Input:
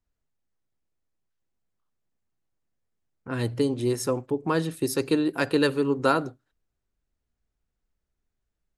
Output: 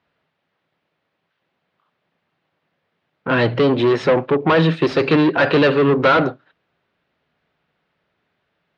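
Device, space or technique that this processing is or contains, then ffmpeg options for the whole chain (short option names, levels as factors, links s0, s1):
overdrive pedal into a guitar cabinet: -filter_complex "[0:a]asplit=2[s0][s1];[s1]highpass=f=720:p=1,volume=28.2,asoftclip=type=tanh:threshold=0.447[s2];[s0][s2]amix=inputs=2:normalize=0,lowpass=f=5700:p=1,volume=0.501,highpass=85,equalizer=f=100:t=q:w=4:g=4,equalizer=f=160:t=q:w=4:g=9,equalizer=f=580:t=q:w=4:g=3,lowpass=f=3600:w=0.5412,lowpass=f=3600:w=1.3066"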